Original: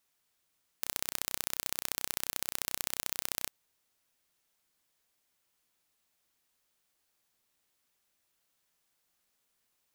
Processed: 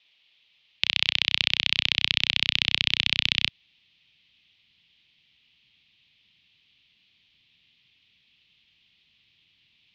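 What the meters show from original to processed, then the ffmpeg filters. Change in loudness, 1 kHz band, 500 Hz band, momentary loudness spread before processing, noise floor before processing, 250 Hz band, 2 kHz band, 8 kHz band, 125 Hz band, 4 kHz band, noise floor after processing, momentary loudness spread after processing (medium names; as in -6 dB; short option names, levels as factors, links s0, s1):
+12.5 dB, +2.0 dB, +1.0 dB, 4 LU, -78 dBFS, +9.0 dB, +18.5 dB, -9.0 dB, +14.0 dB, +20.5 dB, -66 dBFS, 4 LU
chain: -af "highpass=f=210:t=q:w=0.5412,highpass=f=210:t=q:w=1.307,lowpass=f=3400:t=q:w=0.5176,lowpass=f=3400:t=q:w=0.7071,lowpass=f=3400:t=q:w=1.932,afreqshift=-110,aexciter=amount=13.8:drive=6.1:freq=2300,asubboost=boost=10.5:cutoff=170,volume=1.58"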